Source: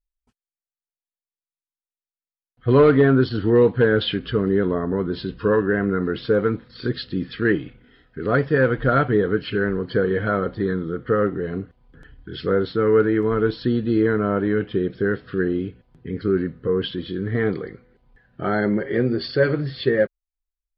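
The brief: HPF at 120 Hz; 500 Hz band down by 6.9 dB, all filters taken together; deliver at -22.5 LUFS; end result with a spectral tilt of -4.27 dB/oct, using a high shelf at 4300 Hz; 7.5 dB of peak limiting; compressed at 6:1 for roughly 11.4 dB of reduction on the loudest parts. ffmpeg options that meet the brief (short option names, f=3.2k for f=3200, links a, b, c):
-af "highpass=120,equalizer=f=500:t=o:g=-8.5,highshelf=f=4.3k:g=8,acompressor=threshold=-27dB:ratio=6,volume=12dB,alimiter=limit=-12dB:level=0:latency=1"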